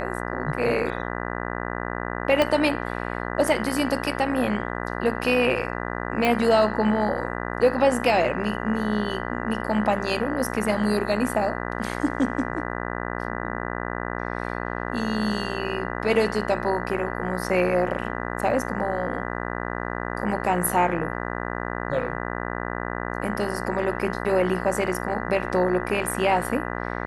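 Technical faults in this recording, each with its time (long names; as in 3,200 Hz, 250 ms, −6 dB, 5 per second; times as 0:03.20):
mains buzz 60 Hz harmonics 33 −30 dBFS
0:02.42: click −8 dBFS
0:06.25: click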